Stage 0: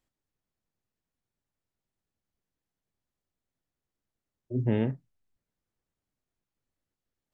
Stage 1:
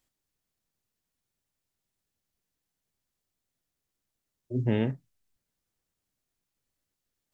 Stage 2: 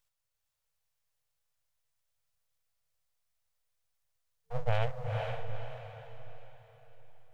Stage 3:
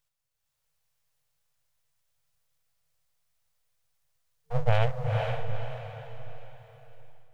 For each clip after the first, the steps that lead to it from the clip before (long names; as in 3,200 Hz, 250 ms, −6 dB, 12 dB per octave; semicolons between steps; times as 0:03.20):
high-shelf EQ 2,600 Hz +8.5 dB
full-wave rectification; brick-wall band-stop 160–450 Hz; feedback delay with all-pass diffusion 466 ms, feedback 44%, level −3 dB
parametric band 150 Hz +5.5 dB 0.52 octaves; automatic gain control gain up to 5.5 dB